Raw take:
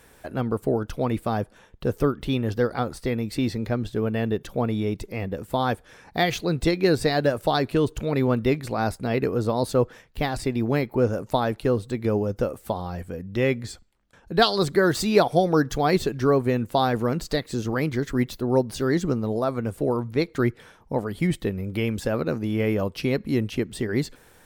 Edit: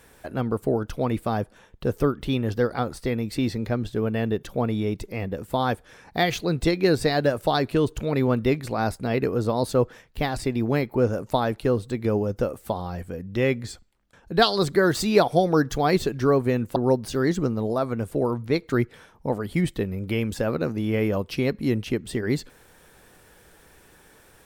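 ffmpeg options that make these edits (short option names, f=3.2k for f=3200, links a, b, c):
-filter_complex "[0:a]asplit=2[a][b];[a]atrim=end=16.762[c];[b]atrim=start=18.418[d];[c][d]acrossfade=d=0.004:c1=hsin:c2=hsin"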